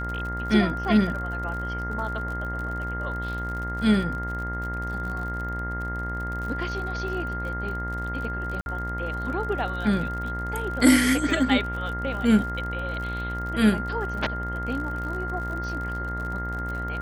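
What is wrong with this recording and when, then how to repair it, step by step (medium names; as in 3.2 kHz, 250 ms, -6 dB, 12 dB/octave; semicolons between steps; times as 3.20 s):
buzz 60 Hz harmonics 35 -32 dBFS
crackle 51 per s -33 dBFS
whine 1.4 kHz -31 dBFS
8.61–8.66 s: dropout 51 ms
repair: de-click; de-hum 60 Hz, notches 35; band-stop 1.4 kHz, Q 30; interpolate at 8.61 s, 51 ms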